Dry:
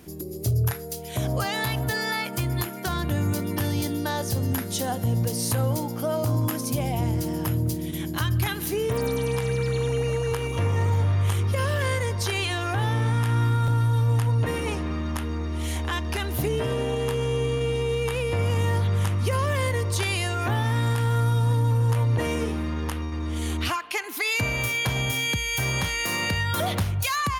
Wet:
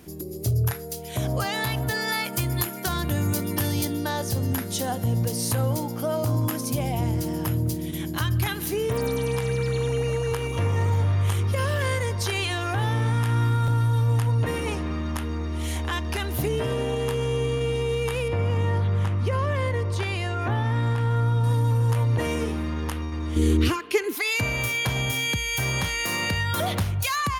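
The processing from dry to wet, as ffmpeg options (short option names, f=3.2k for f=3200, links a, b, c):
-filter_complex "[0:a]asettb=1/sr,asplit=3[a][b][c];[a]atrim=end=2.084[d];[b]atrim=start=2.08:end=3.85,asetpts=PTS-STARTPTS,afade=t=in:d=0.004:c=qsin,afade=t=out:st=1.766:d=0.004:c=qsin,highshelf=f=5.1k:g=6.5[e];[c]atrim=start=3.846[f];[d][e]acrossfade=d=0.004:c1=hsin:c2=qsin[g];[g][f]acrossfade=d=0.004:c1=qsin:c2=hsin,asettb=1/sr,asplit=3[h][i][j];[h]atrim=end=18.284[k];[i]atrim=start=18.28:end=21.44,asetpts=PTS-STARTPTS,afade=t=in:d=0.004:c=qsin,afade=t=out:st=3.156:d=0.004:c=qsin,aemphasis=mode=reproduction:type=75kf[l];[j]atrim=start=21.436[m];[k][l]acrossfade=d=0.004:c1=hsin:c2=qsin[n];[n][m]acrossfade=d=0.004:c1=qsin:c2=hsin,asettb=1/sr,asplit=3[o][p][q];[o]atrim=end=23.364[r];[p]atrim=start=23.36:end=24.15,asetpts=PTS-STARTPTS,afade=t=in:d=0.004:c=qsin,afade=t=out:st=0.786:d=0.004:c=qsin,lowshelf=f=550:t=q:w=3:g=7.5[s];[q]atrim=start=24.146[t];[r][s]acrossfade=d=0.004:c1=hsin:c2=qsin[u];[u][t]acrossfade=d=0.004:c1=qsin:c2=hsin"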